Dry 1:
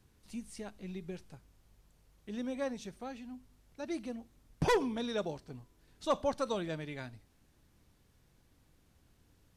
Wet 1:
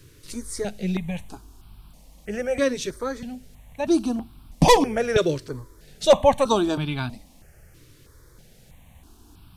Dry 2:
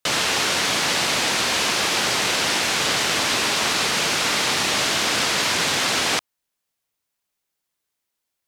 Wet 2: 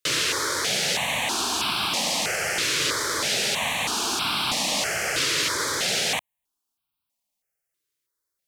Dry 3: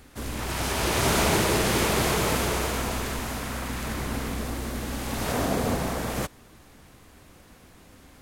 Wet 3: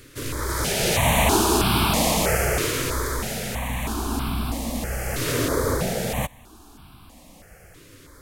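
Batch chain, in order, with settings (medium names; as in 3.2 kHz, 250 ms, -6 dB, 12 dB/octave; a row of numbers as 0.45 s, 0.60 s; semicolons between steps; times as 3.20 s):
stepped phaser 3.1 Hz 210–1900 Hz; normalise loudness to -23 LUFS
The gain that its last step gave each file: +18.5 dB, -1.0 dB, +6.5 dB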